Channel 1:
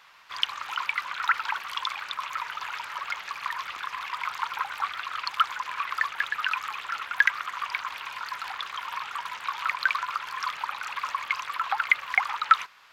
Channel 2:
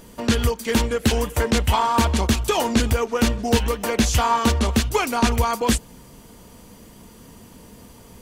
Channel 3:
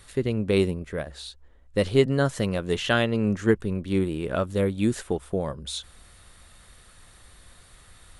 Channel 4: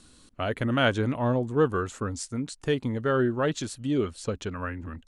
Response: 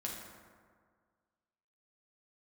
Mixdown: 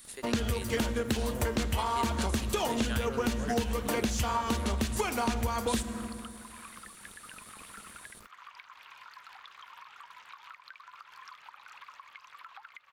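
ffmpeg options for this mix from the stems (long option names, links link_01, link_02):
-filter_complex "[0:a]alimiter=limit=-15dB:level=0:latency=1:release=465,acompressor=threshold=-33dB:ratio=6,adelay=850,volume=-13dB[link_01];[1:a]aeval=exprs='sgn(val(0))*max(abs(val(0))-0.0075,0)':channel_layout=same,adelay=50,volume=-4dB,asplit=2[link_02][link_03];[link_03]volume=-7dB[link_04];[2:a]highpass=800,aemphasis=mode=production:type=75kf,volume=-8dB[link_05];[3:a]volume=-11dB[link_06];[4:a]atrim=start_sample=2205[link_07];[link_04][link_07]afir=irnorm=-1:irlink=0[link_08];[link_01][link_02][link_05][link_06][link_08]amix=inputs=5:normalize=0,acompressor=threshold=-26dB:ratio=10"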